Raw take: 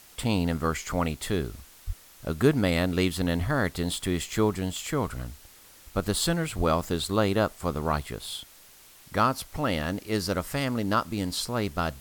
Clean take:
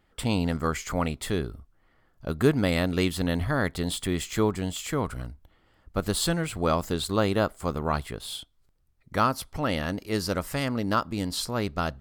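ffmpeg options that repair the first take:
ffmpeg -i in.wav -filter_complex "[0:a]asplit=3[link_01][link_02][link_03];[link_01]afade=type=out:start_time=1.86:duration=0.02[link_04];[link_02]highpass=frequency=140:width=0.5412,highpass=frequency=140:width=1.3066,afade=type=in:start_time=1.86:duration=0.02,afade=type=out:start_time=1.98:duration=0.02[link_05];[link_03]afade=type=in:start_time=1.98:duration=0.02[link_06];[link_04][link_05][link_06]amix=inputs=3:normalize=0,asplit=3[link_07][link_08][link_09];[link_07]afade=type=out:start_time=6.57:duration=0.02[link_10];[link_08]highpass=frequency=140:width=0.5412,highpass=frequency=140:width=1.3066,afade=type=in:start_time=6.57:duration=0.02,afade=type=out:start_time=6.69:duration=0.02[link_11];[link_09]afade=type=in:start_time=6.69:duration=0.02[link_12];[link_10][link_11][link_12]amix=inputs=3:normalize=0,afwtdn=0.0025" out.wav

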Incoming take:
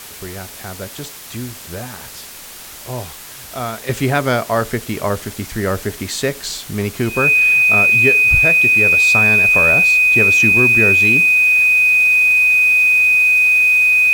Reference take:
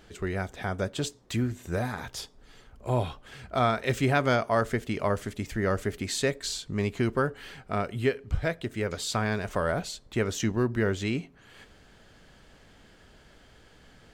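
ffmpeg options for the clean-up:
ffmpeg -i in.wav -af "adeclick=threshold=4,bandreject=frequency=2500:width=30,afwtdn=0.02,asetnsamples=nb_out_samples=441:pad=0,asendcmd='3.89 volume volume -7.5dB',volume=0dB" out.wav

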